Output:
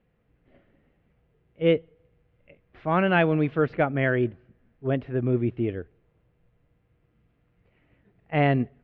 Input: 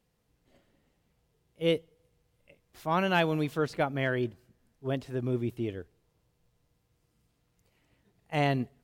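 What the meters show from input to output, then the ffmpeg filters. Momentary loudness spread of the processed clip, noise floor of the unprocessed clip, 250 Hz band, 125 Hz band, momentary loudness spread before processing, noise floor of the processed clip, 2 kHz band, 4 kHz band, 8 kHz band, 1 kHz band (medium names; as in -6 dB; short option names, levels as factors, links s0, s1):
9 LU, -75 dBFS, +6.5 dB, +6.5 dB, 10 LU, -69 dBFS, +5.5 dB, -1.5 dB, no reading, +3.5 dB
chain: -af "lowpass=f=2500:w=0.5412,lowpass=f=2500:w=1.3066,equalizer=f=940:t=o:w=0.52:g=-6,volume=2.11"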